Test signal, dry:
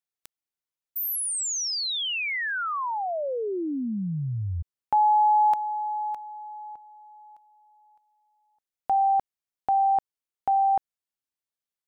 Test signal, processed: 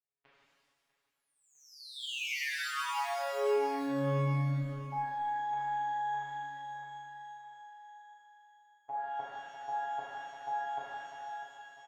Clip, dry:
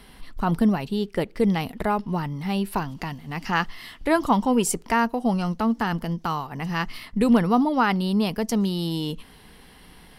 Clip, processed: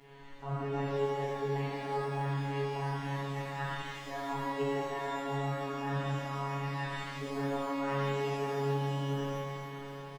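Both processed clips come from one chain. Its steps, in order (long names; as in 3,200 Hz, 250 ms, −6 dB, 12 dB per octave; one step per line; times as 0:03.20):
low-pass filter 2,600 Hz 24 dB per octave
on a send: repeating echo 649 ms, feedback 45%, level −17 dB
on the sum: phases set to zero 139 Hz
low-shelf EQ 150 Hz −10 dB
reversed playback
downward compressor 6 to 1, threshold −35 dBFS
reversed playback
reverb with rising layers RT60 1.9 s, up +12 semitones, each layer −8 dB, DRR −8 dB
level −7 dB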